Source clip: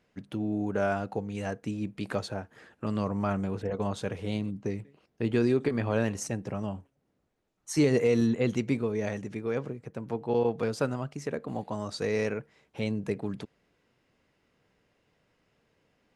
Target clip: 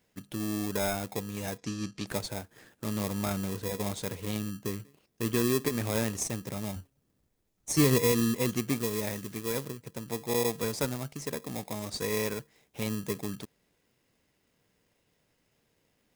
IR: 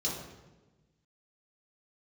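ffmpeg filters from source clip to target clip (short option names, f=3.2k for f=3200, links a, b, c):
-filter_complex "[0:a]asettb=1/sr,asplit=3[a][b][c];[a]atrim=end=6.764[d];[b]atrim=start=6.76:end=8.12,asetpts=PTS-STARTPTS,afade=t=in:d=0.004:c=qsin,afade=t=out:st=1.356:d=0.004:c=qsin,lowshelf=f=140:g=10[e];[c]atrim=start=8.116[f];[d][e]acrossfade=d=0.004:c1=hsin:c2=qsin[g];[g][f]acrossfade=d=0.004:c1=qsin:c2=hsin,asplit=2[h][i];[i]acrusher=samples=30:mix=1:aa=0.000001,volume=-3.5dB[j];[h][j]amix=inputs=2:normalize=0,asettb=1/sr,asplit=3[k][l][m];[k]atrim=end=1.584[n];[l]atrim=start=1.58:end=2.07,asetpts=PTS-STARTPTS,afade=t=in:d=0.004:c=qsin,afade=t=out:st=0.486:d=0.004:c=qsin,lowpass=f=5.7k:t=q:w=2.1[o];[m]atrim=start=2.066[p];[n][o]acrossfade=d=0.004:c1=hsin:c2=qsin[q];[q][p]acrossfade=d=0.004:c1=qsin:c2=hsin,asettb=1/sr,asplit=3[r][s][t];[r]atrim=end=8.764[u];[s]atrim=start=8.76:end=9.64,asetpts=PTS-STARTPTS,afade=t=in:d=0.004:c=qsin,afade=t=out:st=0.876:d=0.004:c=qsin,acrusher=bits=5:mode=log:mix=0:aa=0.000001[v];[t]atrim=start=9.636[w];[u][v]acrossfade=d=0.004:c1=hsin:c2=qsin[x];[x][w]acrossfade=d=0.004:c1=qsin:c2=hsin,crystalizer=i=3:c=0,volume=-6.5dB"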